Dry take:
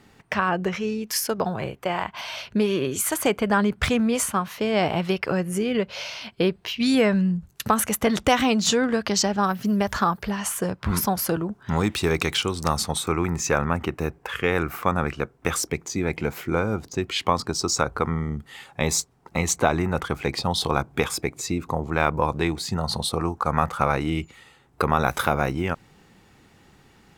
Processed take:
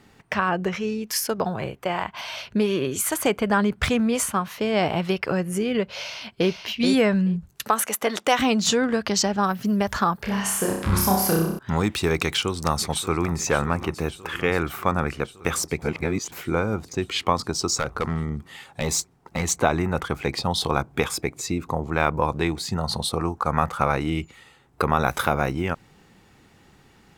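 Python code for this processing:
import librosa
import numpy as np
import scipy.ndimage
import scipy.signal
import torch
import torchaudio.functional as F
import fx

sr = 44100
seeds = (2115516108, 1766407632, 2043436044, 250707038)

y = fx.echo_throw(x, sr, start_s=5.97, length_s=0.54, ms=430, feedback_pct=10, wet_db=-5.5)
y = fx.highpass(y, sr, hz=370.0, slope=12, at=(7.65, 8.39))
y = fx.room_flutter(y, sr, wall_m=5.3, rt60_s=0.72, at=(10.16, 11.59))
y = fx.echo_throw(y, sr, start_s=12.22, length_s=1.14, ms=580, feedback_pct=75, wet_db=-15.5)
y = fx.clip_hard(y, sr, threshold_db=-17.5, at=(17.76, 19.51))
y = fx.edit(y, sr, fx.reverse_span(start_s=15.82, length_s=0.5), tone=tone)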